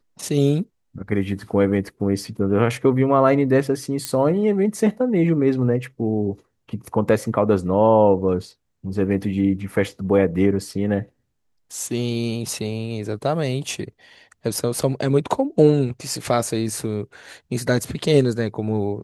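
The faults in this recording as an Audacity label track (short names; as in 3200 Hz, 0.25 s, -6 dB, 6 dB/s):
4.050000	4.050000	pop -8 dBFS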